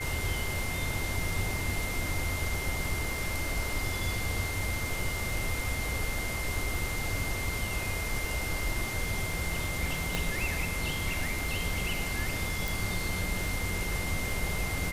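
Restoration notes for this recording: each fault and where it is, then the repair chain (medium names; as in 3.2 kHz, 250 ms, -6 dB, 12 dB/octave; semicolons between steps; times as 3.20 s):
crackle 23 per s -36 dBFS
whine 2.1 kHz -36 dBFS
10.15 s: pop
12.68 s: pop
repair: de-click; band-stop 2.1 kHz, Q 30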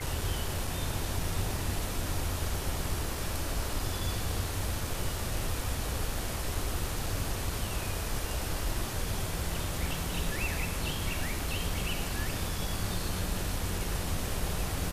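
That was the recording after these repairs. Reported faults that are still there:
10.15 s: pop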